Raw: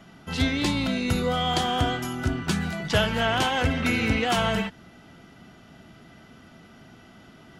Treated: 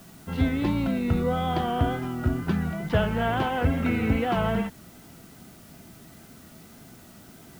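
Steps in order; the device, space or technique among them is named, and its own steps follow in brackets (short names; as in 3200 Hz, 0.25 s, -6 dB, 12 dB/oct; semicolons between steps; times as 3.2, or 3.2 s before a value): cassette deck with a dirty head (tape spacing loss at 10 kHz 42 dB; wow and flutter; white noise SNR 27 dB); gain +2 dB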